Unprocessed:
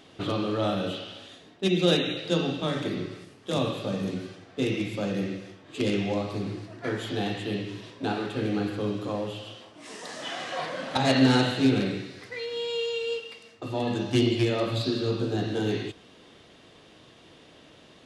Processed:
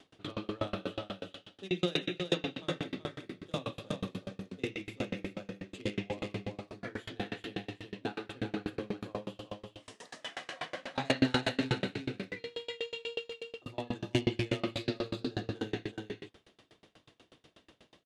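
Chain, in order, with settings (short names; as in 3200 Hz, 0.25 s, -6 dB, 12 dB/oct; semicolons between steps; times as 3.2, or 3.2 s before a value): dynamic EQ 2100 Hz, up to +5 dB, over -44 dBFS, Q 1.3; on a send: echo 0.377 s -4.5 dB; on the sum: dB-ramp tremolo decaying 8.2 Hz, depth 31 dB; gain -2.5 dB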